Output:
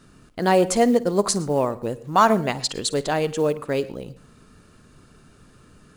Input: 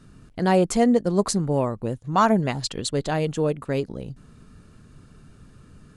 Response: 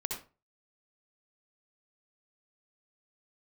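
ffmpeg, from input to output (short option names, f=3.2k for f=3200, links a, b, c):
-filter_complex "[0:a]bass=f=250:g=-8,treble=f=4k:g=1,asplit=2[a][b];[1:a]atrim=start_sample=2205,asetrate=52920,aresample=44100,adelay=54[c];[b][c]afir=irnorm=-1:irlink=0,volume=-17dB[d];[a][d]amix=inputs=2:normalize=0,acrusher=bits=8:mode=log:mix=0:aa=0.000001,volume=3dB"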